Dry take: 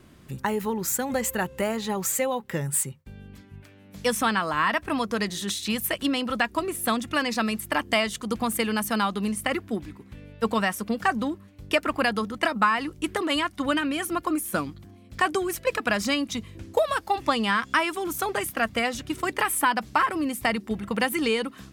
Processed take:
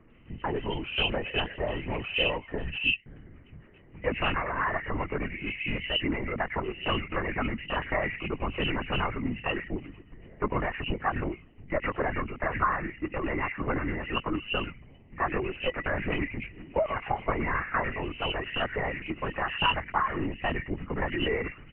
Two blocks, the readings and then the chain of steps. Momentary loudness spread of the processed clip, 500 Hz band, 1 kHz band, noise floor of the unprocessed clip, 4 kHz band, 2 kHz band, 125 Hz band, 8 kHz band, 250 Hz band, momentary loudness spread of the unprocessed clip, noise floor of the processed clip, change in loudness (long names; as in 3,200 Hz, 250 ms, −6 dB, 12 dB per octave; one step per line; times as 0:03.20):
7 LU, −4.0 dB, −5.0 dB, −51 dBFS, −2.5 dB, −3.5 dB, +2.5 dB, below −40 dB, −6.5 dB, 7 LU, −53 dBFS, −4.5 dB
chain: hearing-aid frequency compression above 1,800 Hz 4 to 1
multiband delay without the direct sound lows, highs 110 ms, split 2,000 Hz
linear-prediction vocoder at 8 kHz whisper
level −4 dB